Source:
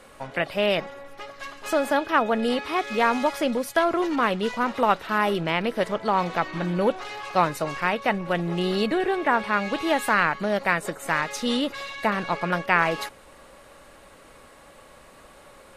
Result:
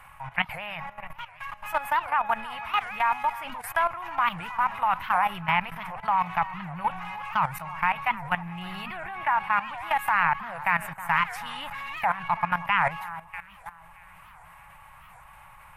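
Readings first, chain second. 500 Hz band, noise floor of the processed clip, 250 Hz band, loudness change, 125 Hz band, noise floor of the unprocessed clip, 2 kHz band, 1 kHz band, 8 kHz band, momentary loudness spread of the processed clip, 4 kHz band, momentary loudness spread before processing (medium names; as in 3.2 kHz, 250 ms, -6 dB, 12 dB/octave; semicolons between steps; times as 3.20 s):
-14.5 dB, -50 dBFS, -14.5 dB, -3.0 dB, -6.5 dB, -50 dBFS, -1.5 dB, +0.5 dB, no reading, 13 LU, -6.5 dB, 6 LU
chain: FFT filter 120 Hz 0 dB, 170 Hz -4 dB, 240 Hz -25 dB, 480 Hz -28 dB, 880 Hz +4 dB, 1.4 kHz -3 dB, 2.5 kHz 0 dB, 4.1 kHz -18 dB, 7.2 kHz -15 dB, 14 kHz +2 dB; on a send: echo whose repeats swap between lows and highs 316 ms, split 1.7 kHz, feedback 58%, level -13 dB; on the sum: level held to a coarse grid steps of 14 dB; warped record 78 rpm, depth 250 cents; trim +6 dB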